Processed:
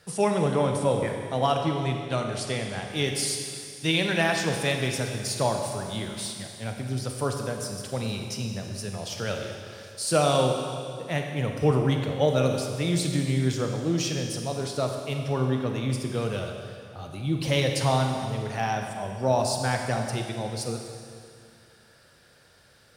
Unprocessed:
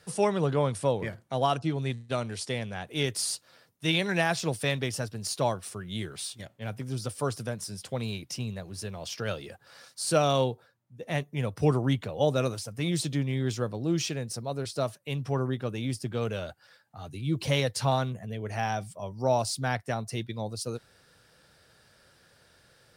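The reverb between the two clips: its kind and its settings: Schroeder reverb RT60 2.3 s, combs from 31 ms, DRR 3 dB; trim +1.5 dB

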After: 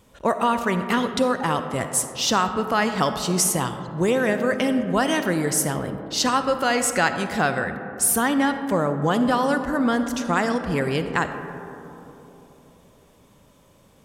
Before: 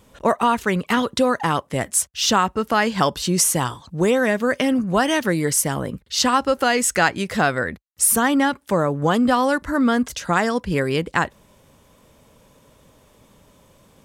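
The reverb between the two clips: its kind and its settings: algorithmic reverb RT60 3.4 s, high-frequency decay 0.25×, pre-delay 15 ms, DRR 8 dB; trim -3 dB

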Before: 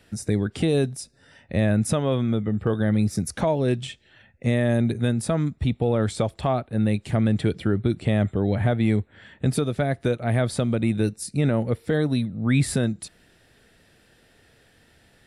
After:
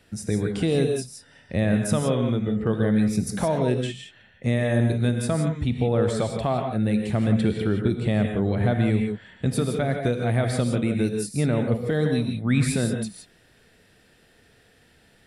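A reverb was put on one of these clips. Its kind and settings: gated-style reverb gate 190 ms rising, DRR 3.5 dB; trim -1.5 dB

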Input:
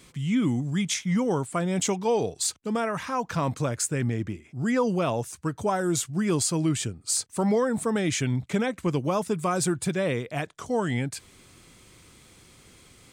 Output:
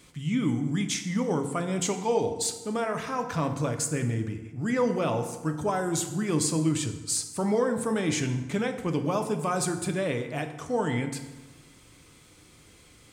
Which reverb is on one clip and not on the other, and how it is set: FDN reverb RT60 1.2 s, low-frequency decay 1.05×, high-frequency decay 0.65×, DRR 5.5 dB; trim -2.5 dB

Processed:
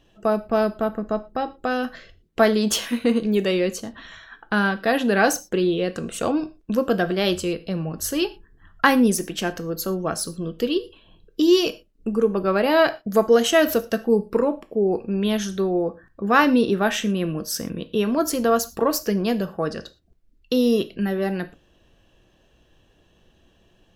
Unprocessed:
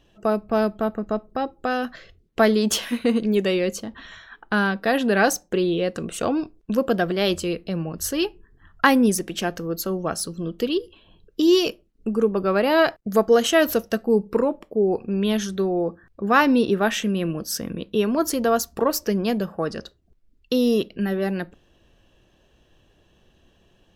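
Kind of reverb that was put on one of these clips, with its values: gated-style reverb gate 140 ms falling, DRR 10.5 dB

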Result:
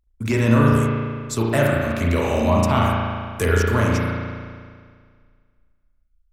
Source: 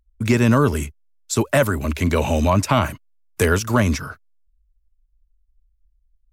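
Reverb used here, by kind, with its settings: spring tank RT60 1.9 s, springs 35 ms, chirp 35 ms, DRR -3 dB; trim -5 dB

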